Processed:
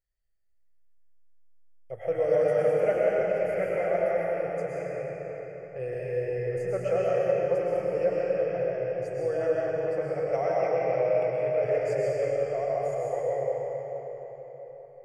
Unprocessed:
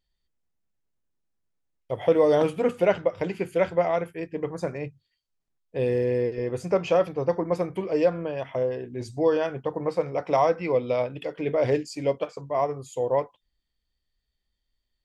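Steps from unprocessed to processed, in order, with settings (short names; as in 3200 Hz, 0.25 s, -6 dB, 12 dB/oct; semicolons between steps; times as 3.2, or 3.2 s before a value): fixed phaser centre 1000 Hz, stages 6; digital reverb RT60 4.5 s, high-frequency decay 0.8×, pre-delay 80 ms, DRR -6.5 dB; gain -7.5 dB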